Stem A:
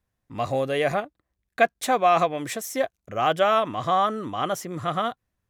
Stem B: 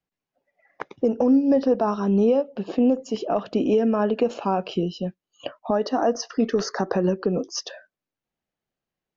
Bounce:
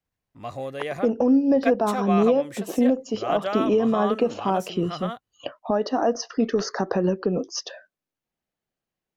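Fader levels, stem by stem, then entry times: -7.5 dB, -0.5 dB; 0.05 s, 0.00 s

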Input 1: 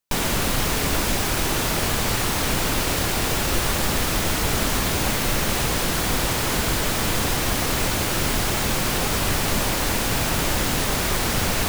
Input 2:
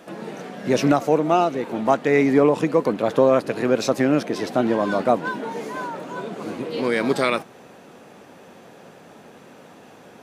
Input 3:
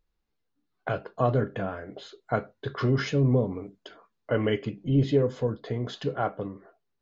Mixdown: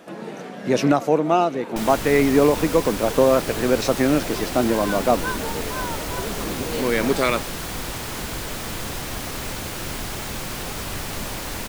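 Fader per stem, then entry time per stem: -7.5 dB, 0.0 dB, mute; 1.65 s, 0.00 s, mute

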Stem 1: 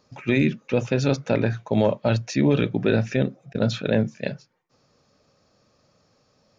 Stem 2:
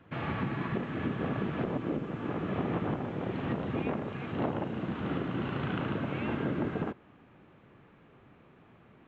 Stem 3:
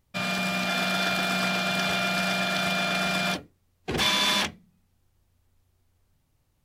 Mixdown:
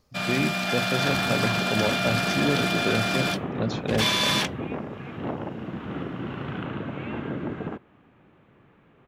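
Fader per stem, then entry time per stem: -6.0 dB, +0.5 dB, 0.0 dB; 0.00 s, 0.85 s, 0.00 s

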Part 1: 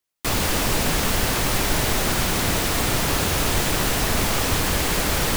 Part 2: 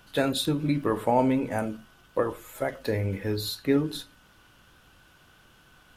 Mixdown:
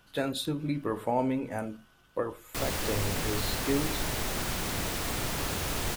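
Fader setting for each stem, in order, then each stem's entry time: -10.5 dB, -5.5 dB; 2.30 s, 0.00 s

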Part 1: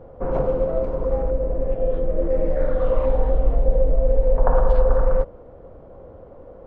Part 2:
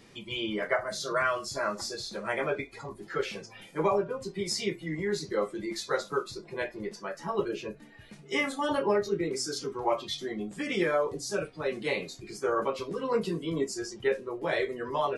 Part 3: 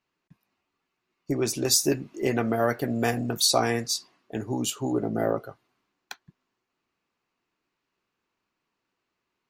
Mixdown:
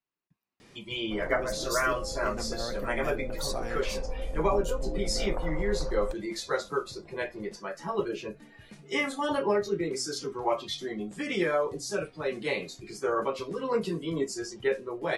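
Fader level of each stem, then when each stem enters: -15.5 dB, 0.0 dB, -13.5 dB; 0.90 s, 0.60 s, 0.00 s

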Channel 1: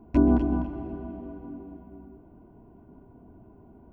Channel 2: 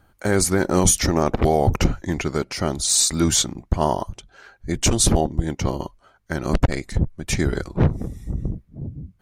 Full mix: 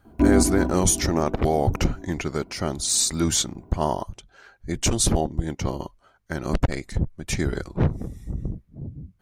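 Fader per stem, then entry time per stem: +2.0 dB, -3.5 dB; 0.05 s, 0.00 s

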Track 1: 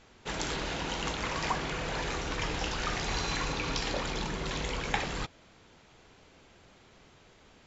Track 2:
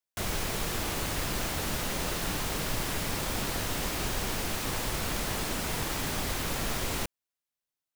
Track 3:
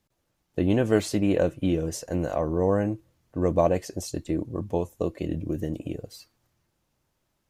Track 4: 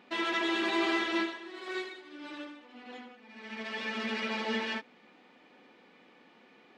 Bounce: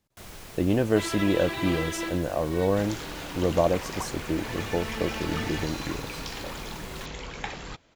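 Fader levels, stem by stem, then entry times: -4.0 dB, -12.0 dB, -1.0 dB, -2.5 dB; 2.50 s, 0.00 s, 0.00 s, 0.85 s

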